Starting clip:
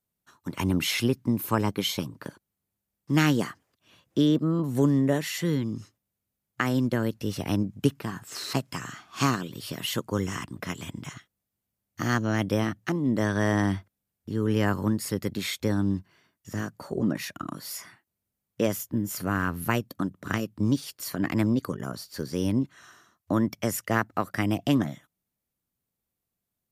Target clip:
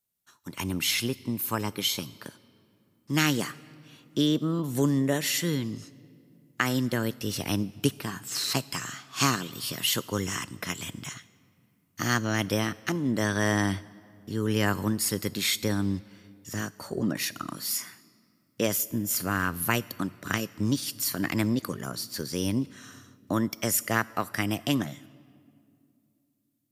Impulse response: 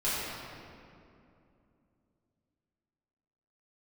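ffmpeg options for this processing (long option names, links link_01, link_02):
-filter_complex "[0:a]asplit=2[link_01][link_02];[1:a]atrim=start_sample=2205,highshelf=frequency=3800:gain=11[link_03];[link_02][link_03]afir=irnorm=-1:irlink=0,volume=-30.5dB[link_04];[link_01][link_04]amix=inputs=2:normalize=0,dynaudnorm=framelen=910:gausssize=7:maxgain=4.5dB,highshelf=frequency=2000:gain=10,volume=-6.5dB"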